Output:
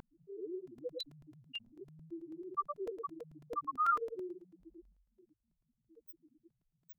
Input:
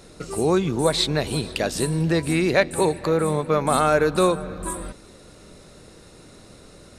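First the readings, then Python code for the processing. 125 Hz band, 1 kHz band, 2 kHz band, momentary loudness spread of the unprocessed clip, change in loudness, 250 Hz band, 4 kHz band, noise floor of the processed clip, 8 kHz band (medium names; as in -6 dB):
-35.0 dB, -12.0 dB, -24.0 dB, 11 LU, -18.0 dB, -25.0 dB, -22.0 dB, -84 dBFS, under -40 dB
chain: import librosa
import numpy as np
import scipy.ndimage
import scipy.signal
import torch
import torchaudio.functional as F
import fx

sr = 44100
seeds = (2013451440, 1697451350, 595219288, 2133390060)

y = fx.lower_of_two(x, sr, delay_ms=0.71)
y = fx.high_shelf(y, sr, hz=2900.0, db=-7.5)
y = fx.echo_feedback(y, sr, ms=108, feedback_pct=36, wet_db=-9.5)
y = fx.dmg_noise_colour(y, sr, seeds[0], colour='blue', level_db=-43.0)
y = fx.peak_eq(y, sr, hz=5700.0, db=-4.5, octaves=0.48)
y = fx.spec_topn(y, sr, count=2)
y = scipy.signal.sosfilt(scipy.signal.cheby2(4, 60, 210.0, 'highpass', fs=sr, output='sos'), y)
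y = fx.vibrato(y, sr, rate_hz=0.86, depth_cents=14.0)
y = fx.buffer_crackle(y, sr, first_s=0.67, period_s=0.11, block=128, kind='repeat')
y = fx.env_flatten(y, sr, amount_pct=50)
y = F.gain(torch.from_numpy(y), -3.0).numpy()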